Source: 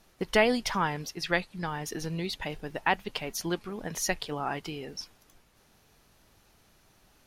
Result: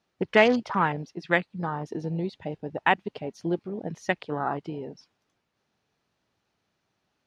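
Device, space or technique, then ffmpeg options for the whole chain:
over-cleaned archive recording: -af "highpass=100,lowpass=5200,afwtdn=0.02,volume=1.68"

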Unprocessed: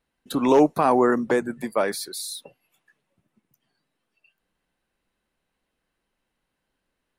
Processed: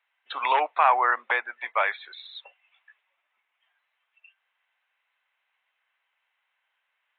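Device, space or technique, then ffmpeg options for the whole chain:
musical greeting card: -af "aresample=8000,aresample=44100,highpass=f=820:w=0.5412,highpass=f=820:w=1.3066,equalizer=f=2200:t=o:w=0.48:g=6.5,volume=1.58"

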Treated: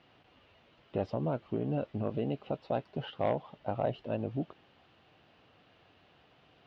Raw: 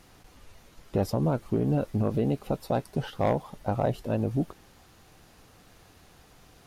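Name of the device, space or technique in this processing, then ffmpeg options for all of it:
guitar cabinet: -af "highpass=110,equalizer=f=190:t=q:w=4:g=-3,equalizer=f=630:t=q:w=4:g=4,equalizer=f=2900:t=q:w=4:g=7,lowpass=f=3800:w=0.5412,lowpass=f=3800:w=1.3066,volume=0.473"

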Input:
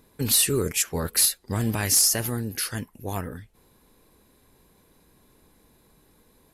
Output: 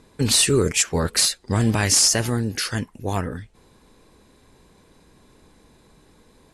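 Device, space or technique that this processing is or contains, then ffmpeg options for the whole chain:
synthesiser wavefolder: -af "aeval=exprs='0.224*(abs(mod(val(0)/0.224+3,4)-2)-1)':c=same,lowpass=f=8800:w=0.5412,lowpass=f=8800:w=1.3066,volume=2"

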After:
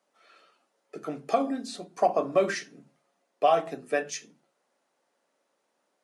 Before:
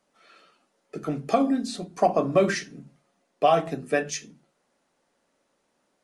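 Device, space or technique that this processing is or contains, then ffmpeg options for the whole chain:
filter by subtraction: -filter_complex "[0:a]asplit=2[s0][s1];[s1]lowpass=580,volume=-1[s2];[s0][s2]amix=inputs=2:normalize=0,volume=0.631"

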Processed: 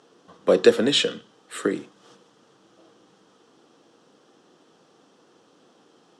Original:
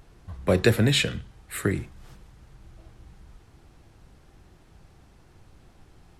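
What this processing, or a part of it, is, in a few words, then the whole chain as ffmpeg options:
television speaker: -af "highpass=f=210:w=0.5412,highpass=f=210:w=1.3066,equalizer=f=280:t=q:w=4:g=4,equalizer=f=480:t=q:w=4:g=9,equalizer=f=1200:t=q:w=4:g=5,equalizer=f=2200:t=q:w=4:g=-8,equalizer=f=3200:t=q:w=4:g=7,equalizer=f=5700:t=q:w=4:g=5,lowpass=f=8800:w=0.5412,lowpass=f=8800:w=1.3066"

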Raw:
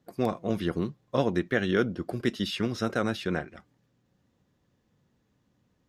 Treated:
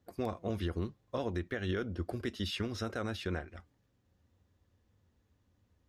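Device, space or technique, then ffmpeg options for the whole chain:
car stereo with a boomy subwoofer: -af "lowshelf=f=110:t=q:w=3:g=6.5,alimiter=limit=0.0944:level=0:latency=1:release=147,volume=0.631"

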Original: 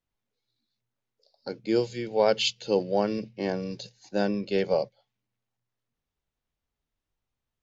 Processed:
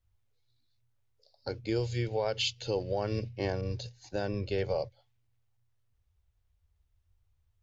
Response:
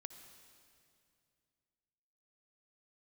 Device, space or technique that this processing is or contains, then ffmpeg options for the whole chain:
car stereo with a boomy subwoofer: -filter_complex "[0:a]lowshelf=f=130:t=q:w=3:g=13.5,alimiter=limit=0.0944:level=0:latency=1:release=147,asettb=1/sr,asplit=3[s0][s1][s2];[s0]atrim=end=3.614[s3];[s1]atrim=start=3.61:end=4.69,asetpts=PTS-STARTPTS,afade=t=in:d=0.004:c=qsin,afade=t=out:st=1.076:d=0.004:c=qsin,adynamicequalizer=threshold=0.00282:dfrequency=2200:dqfactor=0.7:tfrequency=2200:tqfactor=0.7:attack=5:release=100:ratio=0.375:range=2.5:mode=cutabove:tftype=highshelf[s4];[s2]atrim=start=4.686[s5];[s3][s4]acrossfade=d=0.004:c1=hsin:c2=qsin[s6];[s6][s5]acrossfade=d=0.004:c1=qsin:c2=hsin"

